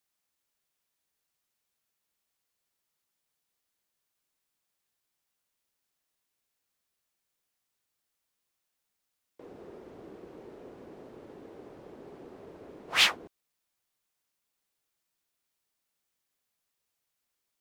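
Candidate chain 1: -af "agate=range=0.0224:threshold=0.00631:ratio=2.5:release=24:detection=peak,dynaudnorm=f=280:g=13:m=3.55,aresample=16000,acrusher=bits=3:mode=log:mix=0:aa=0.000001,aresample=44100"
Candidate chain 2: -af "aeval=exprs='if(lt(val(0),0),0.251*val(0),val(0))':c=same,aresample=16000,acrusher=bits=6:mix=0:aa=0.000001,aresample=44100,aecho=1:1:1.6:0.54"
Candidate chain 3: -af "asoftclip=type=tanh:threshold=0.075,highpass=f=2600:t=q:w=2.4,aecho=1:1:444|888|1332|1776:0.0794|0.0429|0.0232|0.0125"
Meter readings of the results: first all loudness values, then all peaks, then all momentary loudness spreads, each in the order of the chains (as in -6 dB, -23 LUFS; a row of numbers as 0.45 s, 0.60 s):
-17.5 LUFS, -27.5 LUFS, -25.0 LUFS; -1.5 dBFS, -8.0 dBFS, -12.5 dBFS; 5 LU, 14 LU, 14 LU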